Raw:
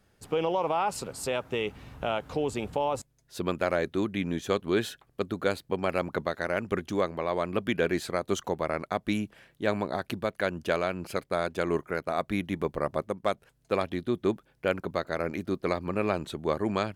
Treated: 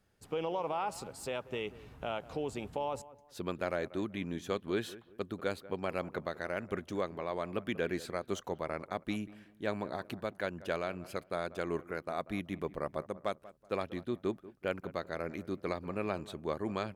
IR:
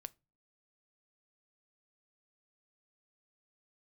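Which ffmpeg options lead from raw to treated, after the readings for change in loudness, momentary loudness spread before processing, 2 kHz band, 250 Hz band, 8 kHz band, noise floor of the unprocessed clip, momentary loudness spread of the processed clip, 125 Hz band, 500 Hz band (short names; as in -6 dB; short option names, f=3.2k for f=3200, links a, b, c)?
-7.5 dB, 5 LU, -7.5 dB, -7.5 dB, -8.5 dB, -68 dBFS, 5 LU, -7.5 dB, -7.5 dB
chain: -filter_complex "[0:a]acrossover=split=4100[a][b];[a]asplit=2[c][d];[d]adelay=188,lowpass=f=1.7k:p=1,volume=-17dB,asplit=2[e][f];[f]adelay=188,lowpass=f=1.7k:p=1,volume=0.32,asplit=2[g][h];[h]adelay=188,lowpass=f=1.7k:p=1,volume=0.32[i];[c][e][g][i]amix=inputs=4:normalize=0[j];[b]asoftclip=type=tanh:threshold=-33dB[k];[j][k]amix=inputs=2:normalize=0,volume=-7.5dB"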